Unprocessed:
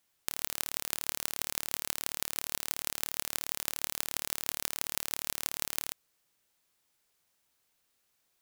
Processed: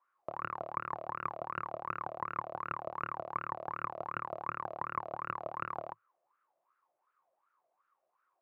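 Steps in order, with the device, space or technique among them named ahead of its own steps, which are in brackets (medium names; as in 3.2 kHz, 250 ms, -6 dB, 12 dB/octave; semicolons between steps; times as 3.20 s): wah-wah guitar rig (wah-wah 2.7 Hz 640–1400 Hz, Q 11; valve stage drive 42 dB, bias 0.7; cabinet simulation 94–3400 Hz, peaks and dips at 110 Hz +8 dB, 160 Hz +8 dB, 350 Hz +10 dB, 540 Hz +8 dB, 1.1 kHz +9 dB, 3.3 kHz -6 dB); trim +18 dB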